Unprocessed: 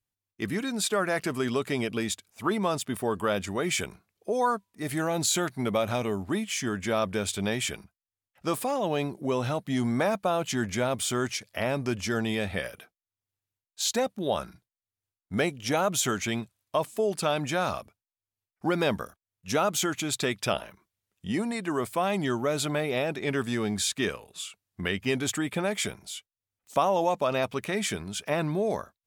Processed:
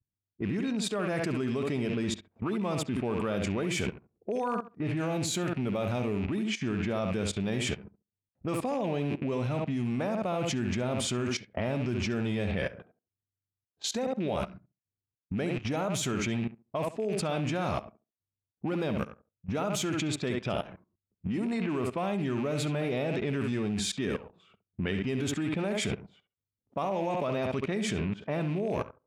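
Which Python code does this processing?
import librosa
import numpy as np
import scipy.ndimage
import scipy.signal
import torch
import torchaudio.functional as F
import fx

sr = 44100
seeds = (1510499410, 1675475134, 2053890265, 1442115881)

p1 = fx.rattle_buzz(x, sr, strikes_db=-42.0, level_db=-28.0)
p2 = fx.highpass(p1, sr, hz=82.0, slope=6)
p3 = p2 + fx.echo_tape(p2, sr, ms=67, feedback_pct=20, wet_db=-8, lp_hz=3400.0, drive_db=8.0, wow_cents=22, dry=0)
p4 = fx.env_lowpass(p3, sr, base_hz=360.0, full_db=-24.0)
p5 = fx.low_shelf(p4, sr, hz=410.0, db=12.0)
p6 = fx.level_steps(p5, sr, step_db=16)
p7 = fx.high_shelf(p6, sr, hz=10000.0, db=-9.0)
y = p7 * 10.0 ** (2.0 / 20.0)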